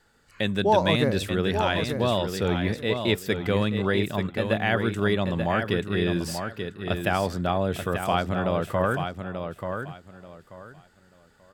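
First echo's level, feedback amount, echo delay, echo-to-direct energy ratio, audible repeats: -7.0 dB, 23%, 885 ms, -7.0 dB, 3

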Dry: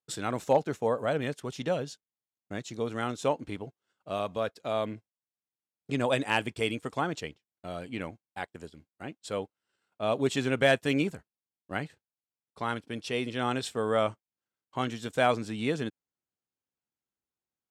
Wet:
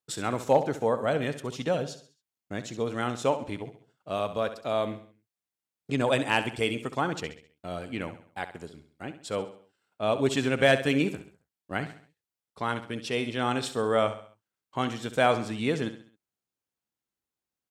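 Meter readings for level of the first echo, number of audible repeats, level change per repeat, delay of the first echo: -12.0 dB, 4, -7.5 dB, 67 ms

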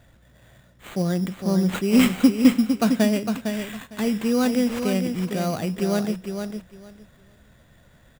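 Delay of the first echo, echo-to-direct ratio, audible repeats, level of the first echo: 456 ms, -7.0 dB, 2, -7.0 dB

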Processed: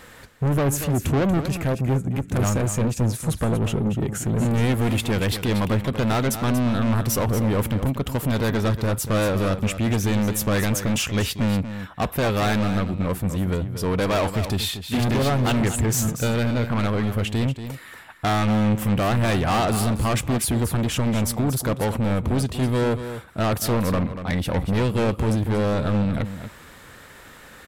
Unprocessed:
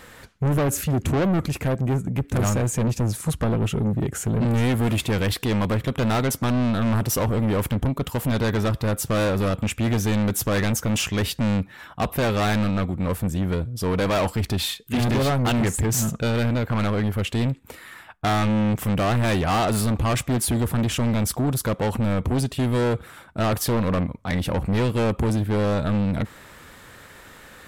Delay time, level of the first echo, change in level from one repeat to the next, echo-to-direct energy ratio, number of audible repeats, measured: 236 ms, -10.5 dB, no regular repeats, -10.5 dB, 1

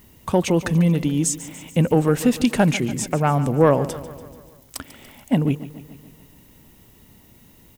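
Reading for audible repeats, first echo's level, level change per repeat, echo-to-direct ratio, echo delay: 5, -15.5 dB, -4.5 dB, -13.5 dB, 144 ms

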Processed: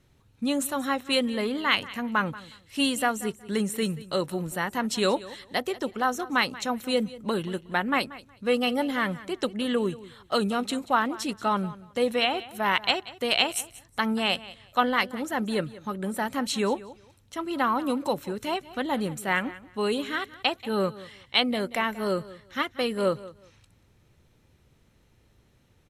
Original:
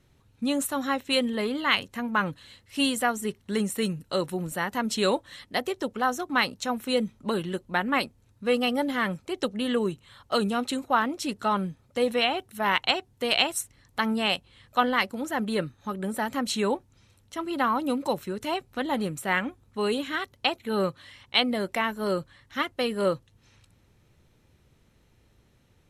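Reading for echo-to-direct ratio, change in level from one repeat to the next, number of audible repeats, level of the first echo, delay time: -18.0 dB, -14.0 dB, 2, -18.0 dB, 183 ms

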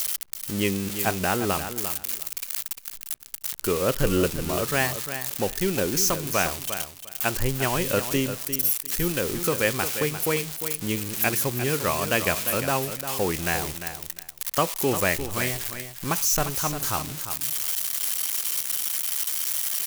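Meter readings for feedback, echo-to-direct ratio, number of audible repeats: 17%, -10.0 dB, 2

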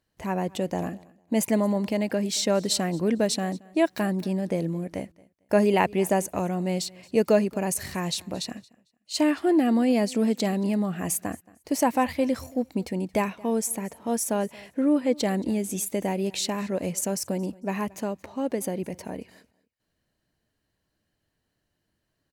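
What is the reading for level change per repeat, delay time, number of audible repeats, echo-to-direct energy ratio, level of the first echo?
no regular repeats, 225 ms, 1, -23.5 dB, -23.5 dB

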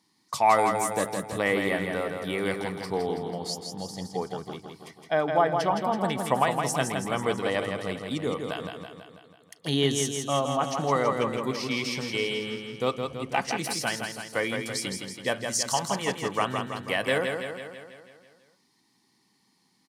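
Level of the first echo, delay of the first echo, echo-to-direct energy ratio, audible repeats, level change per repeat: -5.5 dB, 164 ms, -3.5 dB, 7, -4.5 dB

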